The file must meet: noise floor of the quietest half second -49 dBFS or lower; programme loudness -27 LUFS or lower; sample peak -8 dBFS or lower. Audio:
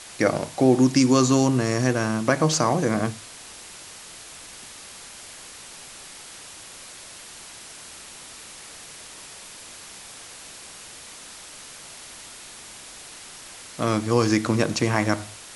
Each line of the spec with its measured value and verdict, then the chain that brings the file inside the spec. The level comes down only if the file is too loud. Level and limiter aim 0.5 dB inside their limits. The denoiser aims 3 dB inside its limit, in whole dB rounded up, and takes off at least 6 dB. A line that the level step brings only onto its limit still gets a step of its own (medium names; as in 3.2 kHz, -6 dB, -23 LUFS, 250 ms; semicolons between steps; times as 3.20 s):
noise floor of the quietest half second -42 dBFS: fail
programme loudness -21.5 LUFS: fail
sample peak -4.5 dBFS: fail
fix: noise reduction 6 dB, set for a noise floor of -42 dBFS; trim -6 dB